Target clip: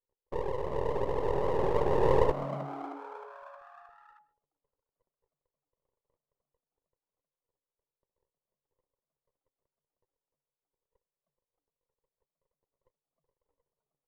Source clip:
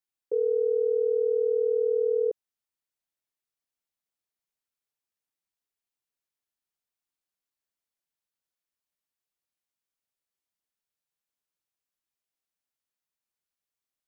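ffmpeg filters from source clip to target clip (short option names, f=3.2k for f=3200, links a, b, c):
-filter_complex "[0:a]alimiter=level_in=3.5dB:limit=-24dB:level=0:latency=1:release=175,volume=-3.5dB,dynaudnorm=f=760:g=5:m=13dB,aeval=exprs='val(0)+0.01*sin(2*PI*480*n/s)':c=same,afftfilt=real='hypot(re,im)*cos(2*PI*random(0))':imag='hypot(re,im)*sin(2*PI*random(1))':win_size=512:overlap=0.75,agate=range=-57dB:threshold=-42dB:ratio=16:detection=peak,aeval=exprs='max(val(0),0)':c=same,asplit=2[a][b];[b]asplit=6[c][d][e][f][g][h];[c]adelay=312,afreqshift=140,volume=-13.5dB[i];[d]adelay=624,afreqshift=280,volume=-17.9dB[j];[e]adelay=936,afreqshift=420,volume=-22.4dB[k];[f]adelay=1248,afreqshift=560,volume=-26.8dB[l];[g]adelay=1560,afreqshift=700,volume=-31.2dB[m];[h]adelay=1872,afreqshift=840,volume=-35.7dB[n];[i][j][k][l][m][n]amix=inputs=6:normalize=0[o];[a][o]amix=inputs=2:normalize=0,volume=8dB"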